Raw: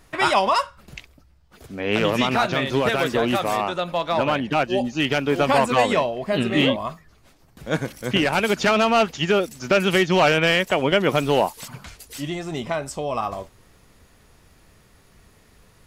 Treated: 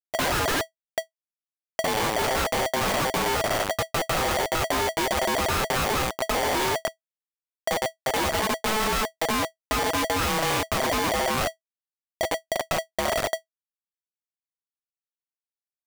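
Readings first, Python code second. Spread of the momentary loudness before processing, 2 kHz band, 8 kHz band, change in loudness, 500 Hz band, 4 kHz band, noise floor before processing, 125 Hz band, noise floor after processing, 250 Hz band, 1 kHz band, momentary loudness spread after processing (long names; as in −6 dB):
12 LU, −3.5 dB, +7.0 dB, −4.5 dB, −6.0 dB, −2.5 dB, −55 dBFS, −6.0 dB, below −85 dBFS, −8.5 dB, −3.0 dB, 6 LU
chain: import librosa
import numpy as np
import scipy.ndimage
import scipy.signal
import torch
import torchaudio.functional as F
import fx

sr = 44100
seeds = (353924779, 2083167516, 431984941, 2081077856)

y = fx.wiener(x, sr, points=41)
y = fx.schmitt(y, sr, flips_db=-25.5)
y = y * np.sign(np.sin(2.0 * np.pi * 650.0 * np.arange(len(y)) / sr))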